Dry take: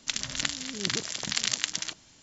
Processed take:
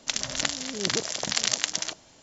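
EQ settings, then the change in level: dynamic EQ 5800 Hz, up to +4 dB, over -41 dBFS, Q 1.8; bell 610 Hz +10.5 dB 1.5 oct; 0.0 dB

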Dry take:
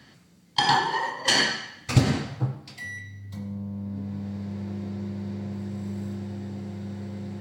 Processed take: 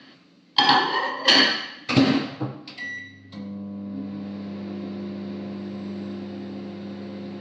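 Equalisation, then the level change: speaker cabinet 210–5100 Hz, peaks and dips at 280 Hz +10 dB, 570 Hz +4 dB, 1100 Hz +5 dB, 2700 Hz +6 dB, 4100 Hz +6 dB; notch 910 Hz, Q 13; +2.5 dB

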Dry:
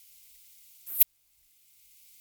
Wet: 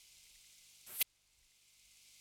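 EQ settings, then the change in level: LPF 7100 Hz 12 dB/oct; +1.5 dB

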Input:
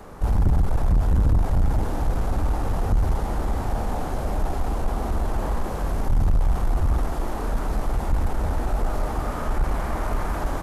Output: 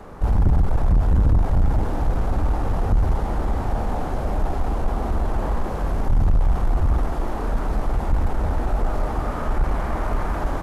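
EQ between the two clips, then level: high shelf 5000 Hz -9.5 dB; +2.0 dB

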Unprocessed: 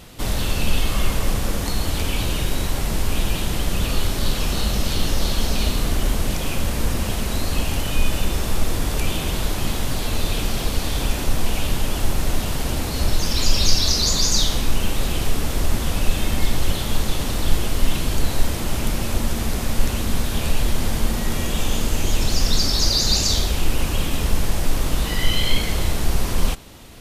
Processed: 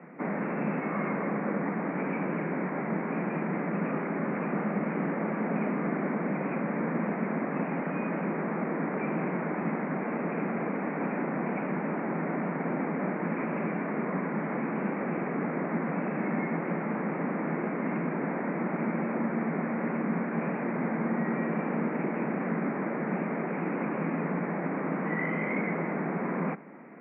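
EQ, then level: steep high-pass 160 Hz 72 dB/oct; steep low-pass 2300 Hz 96 dB/oct; low shelf 350 Hz +4 dB; -2.5 dB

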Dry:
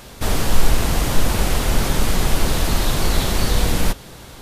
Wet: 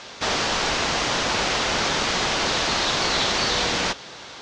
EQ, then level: HPF 840 Hz 6 dB/oct; steep low-pass 6400 Hz 36 dB/oct; +5.0 dB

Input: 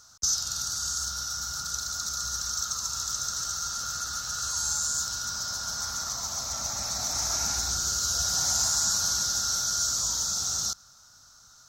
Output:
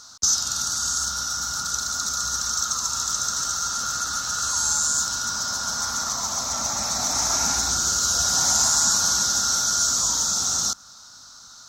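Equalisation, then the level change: dynamic EQ 4300 Hz, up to -8 dB, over -44 dBFS, Q 1.8; graphic EQ 250/500/1000/2000/4000/8000 Hz +10/+3/+8/+3/+10/+5 dB; +1.0 dB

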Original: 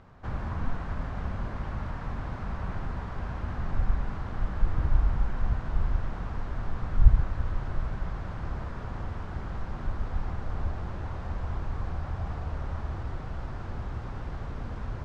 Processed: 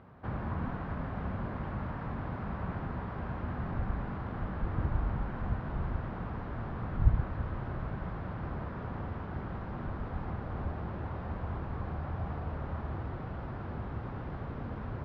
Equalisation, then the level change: HPF 130 Hz 6 dB/oct; air absorption 270 m; bell 180 Hz +3.5 dB 3 oct; 0.0 dB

